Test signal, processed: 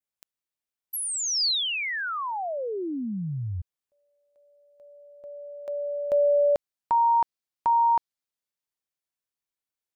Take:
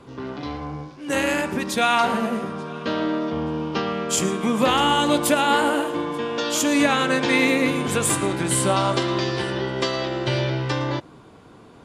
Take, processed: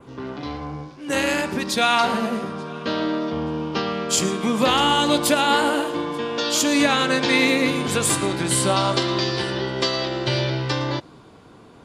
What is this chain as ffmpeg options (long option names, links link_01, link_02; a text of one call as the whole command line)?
ffmpeg -i in.wav -af "adynamicequalizer=threshold=0.00631:dfrequency=4500:dqfactor=1.7:tfrequency=4500:tqfactor=1.7:attack=5:release=100:ratio=0.375:range=3.5:mode=boostabove:tftype=bell" out.wav